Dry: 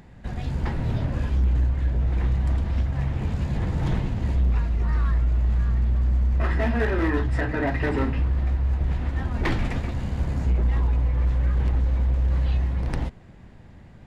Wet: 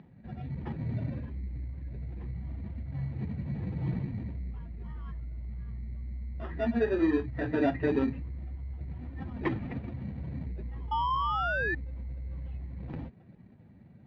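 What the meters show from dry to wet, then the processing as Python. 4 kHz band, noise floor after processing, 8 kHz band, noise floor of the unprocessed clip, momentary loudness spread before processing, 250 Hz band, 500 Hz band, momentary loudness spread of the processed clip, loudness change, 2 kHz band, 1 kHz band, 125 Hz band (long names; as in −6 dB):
−5.0 dB, −55 dBFS, can't be measured, −46 dBFS, 5 LU, −3.0 dB, −2.5 dB, 13 LU, −9.5 dB, −4.0 dB, 0.0 dB, −12.5 dB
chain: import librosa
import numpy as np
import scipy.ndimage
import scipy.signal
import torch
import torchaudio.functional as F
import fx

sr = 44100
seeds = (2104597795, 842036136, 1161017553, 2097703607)

p1 = fx.spec_expand(x, sr, power=1.6)
p2 = scipy.signal.sosfilt(scipy.signal.butter(2, 170.0, 'highpass', fs=sr, output='sos'), p1)
p3 = fx.spec_paint(p2, sr, seeds[0], shape='rise', start_s=10.91, length_s=0.84, low_hz=870.0, high_hz=1800.0, level_db=-27.0)
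p4 = fx.sample_hold(p3, sr, seeds[1], rate_hz=2100.0, jitter_pct=0)
p5 = p3 + (p4 * 10.0 ** (-5.0 / 20.0))
p6 = scipy.signal.sosfilt(scipy.signal.butter(4, 3500.0, 'lowpass', fs=sr, output='sos'), p5)
y = p6 * 10.0 ** (-3.5 / 20.0)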